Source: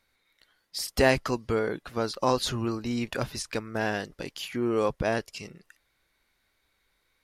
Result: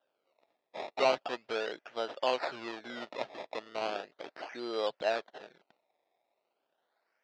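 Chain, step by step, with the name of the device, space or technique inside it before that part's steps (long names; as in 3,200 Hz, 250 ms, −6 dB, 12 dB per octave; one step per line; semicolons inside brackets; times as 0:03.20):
circuit-bent sampling toy (sample-and-hold swept by an LFO 20×, swing 100% 0.37 Hz; loudspeaker in its box 560–4,500 Hz, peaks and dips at 640 Hz +5 dB, 1,100 Hz −6 dB, 2,200 Hz −3 dB)
level −3 dB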